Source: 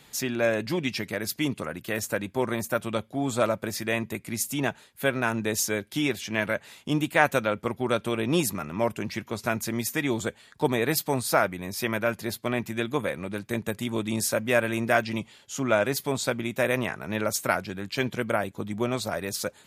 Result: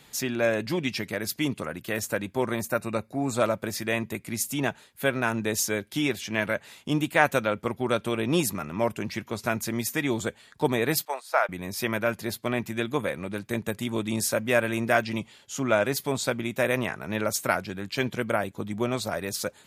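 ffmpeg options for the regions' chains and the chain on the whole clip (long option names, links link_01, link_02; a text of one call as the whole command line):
ffmpeg -i in.wav -filter_complex "[0:a]asettb=1/sr,asplit=3[link_01][link_02][link_03];[link_01]atrim=end=2.704[link_04];[link_02]atrim=start=2.7:end=3.35,asetpts=PTS-STARTPTS,afade=type=in:duration=0.004:curve=qsin,afade=type=out:start_time=0.646:duration=0.004:curve=qsin,acompressor=mode=upward:threshold=-42dB:ratio=2.5:attack=3.2:release=140:knee=2.83:detection=peak,asuperstop=centerf=3200:order=12:qfactor=4.1[link_05];[link_03]atrim=start=3.346[link_06];[link_04][link_05]acrossfade=duration=0.004:curve1=hsin:curve2=qsin[link_07];[link_07][link_06]acrossfade=duration=0.004:curve1=qsin:curve2=hsin,asettb=1/sr,asplit=3[link_08][link_09][link_10];[link_08]atrim=end=11.054[link_11];[link_09]atrim=start=11.05:end=11.49,asetpts=PTS-STARTPTS,afade=type=in:duration=0.004:curve=qsin,afade=type=out:start_time=0.436:duration=0.004:curve=qsin,agate=range=-9dB:threshold=-28dB:ratio=16:release=100:detection=peak,highpass=frequency=580:width=0.5412,highpass=frequency=580:width=1.3066,aemphasis=mode=reproduction:type=cd[link_12];[link_10]atrim=start=11.486[link_13];[link_11][link_12]acrossfade=duration=0.004:curve1=hsin:curve2=qsin[link_14];[link_14][link_13]acrossfade=duration=0.004:curve1=qsin:curve2=hsin" out.wav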